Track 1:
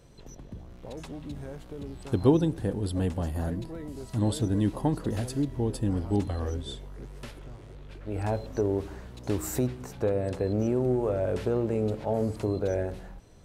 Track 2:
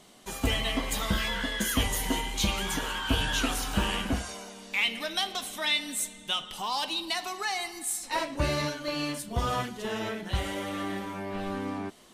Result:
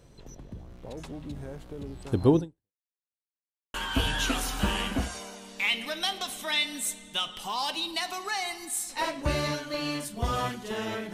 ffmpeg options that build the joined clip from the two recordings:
-filter_complex "[0:a]apad=whole_dur=11.13,atrim=end=11.13,asplit=2[a][b];[a]atrim=end=2.81,asetpts=PTS-STARTPTS,afade=t=out:st=2.39:d=0.42:c=exp[c];[b]atrim=start=2.81:end=3.74,asetpts=PTS-STARTPTS,volume=0[d];[1:a]atrim=start=2.88:end=10.27,asetpts=PTS-STARTPTS,afade=t=in:d=0.004:c=hsin[e];[c][d][e]concat=n=3:v=0:a=1"

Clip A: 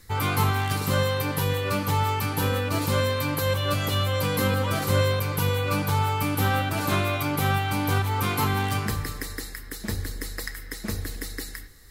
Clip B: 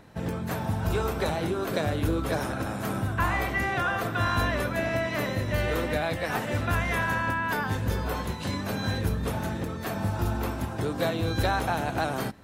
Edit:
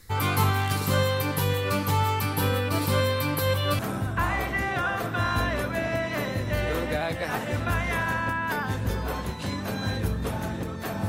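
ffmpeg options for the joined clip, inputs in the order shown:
-filter_complex "[0:a]asettb=1/sr,asplit=3[a][b][c];[a]atrim=end=2.234[d];[b]atrim=start=2.23:end=3.79,asetpts=PTS-STARTPTS,afade=t=in:d=0.004:c=qsin,afade=t=out:st=1.556:d=0.004:c=qsin,equalizer=f=6.7k:w=6.7:g=-7.5[e];[c]atrim=start=3.786[f];[d][e]acrossfade=d=0.004:c1=hsin:c2=qsin[g];[g][f]acrossfade=d=0.004:c1=qsin:c2=hsin,apad=whole_dur=11.08,atrim=end=11.08,atrim=end=3.792[h];[1:a]atrim=start=2.798:end=10.09[i];[h][i]acrossfade=d=0.004:c1=hsin:c2=hsin"

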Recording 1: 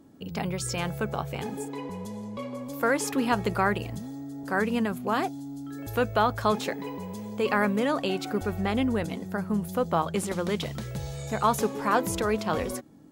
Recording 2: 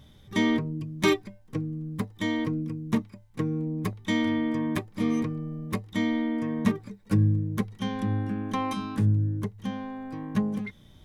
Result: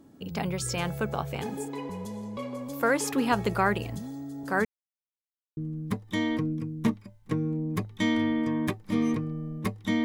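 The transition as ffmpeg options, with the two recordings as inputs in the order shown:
-filter_complex "[0:a]apad=whole_dur=10.04,atrim=end=10.04,asplit=2[a][b];[a]atrim=end=4.65,asetpts=PTS-STARTPTS,afade=t=out:st=4.646:d=0.004:c=hsin[c];[b]atrim=start=4.65:end=5.57,asetpts=PTS-STARTPTS,volume=0[d];[1:a]atrim=start=1.65:end=6.12,asetpts=PTS-STARTPTS,afade=t=in:d=0.004:c=hsin[e];[c][d][e]concat=n=3:v=0:a=1"

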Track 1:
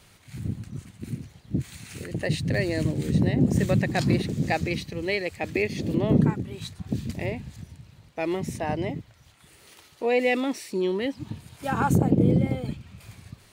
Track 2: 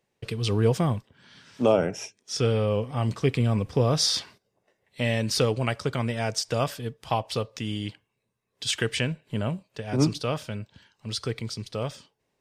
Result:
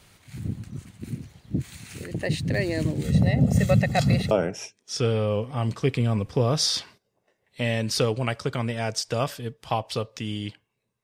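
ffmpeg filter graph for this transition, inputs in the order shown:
-filter_complex "[0:a]asettb=1/sr,asplit=3[a][b][c];[a]atrim=end=3.044[d];[b]atrim=start=3.04:end=4.31,asetpts=PTS-STARTPTS,afade=t=in:d=0.004:c=qsin,afade=t=out:st=1.266:d=0.004:c=qsin,aecho=1:1:1.5:0.86,atrim=end_sample=56007[e];[c]atrim=start=4.306[f];[d][e]acrossfade=d=0.004:c1=hsin:c2=qsin[g];[g][f]acrossfade=d=0.004:c1=qsin:c2=hsin,apad=whole_dur=11.03,atrim=end=11.03,atrim=end=4.312[h];[1:a]atrim=start=1.708:end=8.43[i];[h][i]acrossfade=d=0.004:c1=hsin:c2=hsin"

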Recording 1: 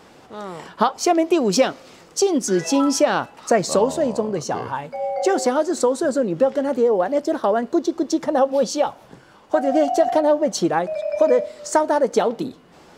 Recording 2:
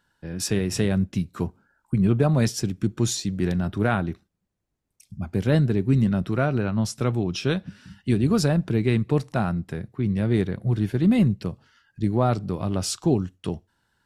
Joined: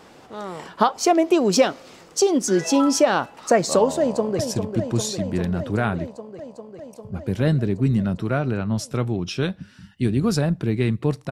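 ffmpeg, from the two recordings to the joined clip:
-filter_complex "[0:a]apad=whole_dur=11.31,atrim=end=11.31,atrim=end=4.392[a];[1:a]atrim=start=2.458:end=9.38[b];[a][b]acrossfade=d=0.004:c1=hsin:c2=hsin,asplit=2[c][d];[d]afade=t=in:st=3.98:d=0.01,afade=t=out:st=4.39:d=0.01,aecho=0:1:400|800|1200|1600|2000|2400|2800|3200|3600|4000|4400|4800:0.446684|0.357347|0.285877|0.228702|0.182962|0.146369|0.117095|0.0936763|0.0749411|0.0599529|0.0479623|0.0383698[e];[c][e]amix=inputs=2:normalize=0"

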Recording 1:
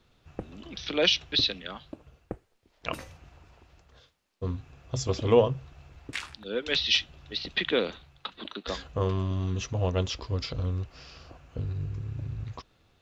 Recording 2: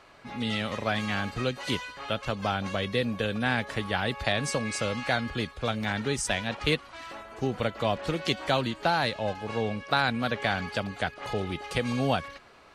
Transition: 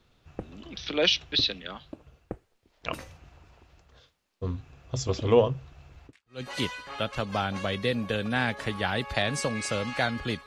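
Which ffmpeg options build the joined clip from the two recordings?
-filter_complex "[0:a]apad=whole_dur=10.46,atrim=end=10.46,atrim=end=6.42,asetpts=PTS-STARTPTS[a];[1:a]atrim=start=1.16:end=5.56,asetpts=PTS-STARTPTS[b];[a][b]acrossfade=d=0.36:c1=exp:c2=exp"

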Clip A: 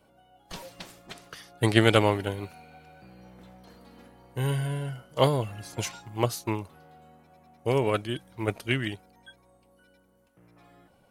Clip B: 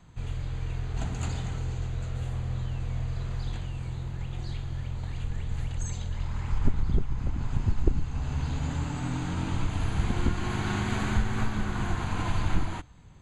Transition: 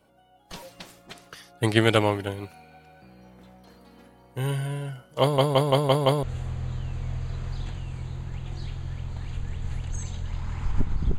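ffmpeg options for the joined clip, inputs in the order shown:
-filter_complex "[0:a]apad=whole_dur=11.18,atrim=end=11.18,asplit=6[a][b][c][d][e][f];[a]atrim=end=5.382[g];[b]atrim=start=5.208:end=5.382[h];[c]atrim=start=5.208:end=5.382[i];[d]atrim=start=5.208:end=5.382[j];[e]atrim=start=5.208:end=5.382[k];[f]atrim=start=5.208:end=5.382[l];[1:a]atrim=start=2.098:end=7.05[m];[g][h]acrossfade=d=0.004:c1=hsin:c2=hsin[n];[n][i]acrossfade=d=0.004:c1=hsin:c2=hsin[o];[o][j]acrossfade=d=0.004:c1=hsin:c2=hsin[p];[p][k]acrossfade=d=0.004:c1=hsin:c2=hsin[q];[q][l]acrossfade=d=0.004:c1=hsin:c2=hsin[r];[r][m]acrossfade=d=0.004:c1=hsin:c2=hsin"

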